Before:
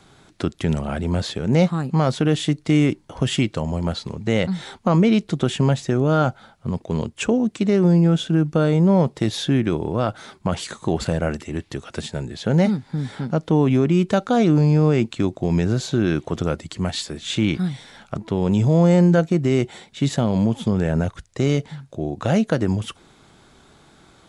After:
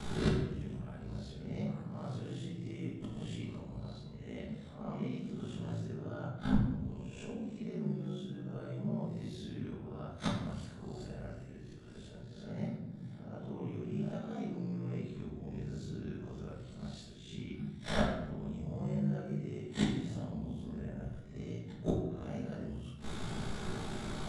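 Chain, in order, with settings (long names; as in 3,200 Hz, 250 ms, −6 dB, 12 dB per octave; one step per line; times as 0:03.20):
peak hold with a rise ahead of every peak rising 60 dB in 0.64 s
low-shelf EQ 190 Hz +7 dB
gate with flip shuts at −22 dBFS, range −33 dB
ring modulation 28 Hz
rectangular room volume 300 cubic metres, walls mixed, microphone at 1.4 metres
level +4.5 dB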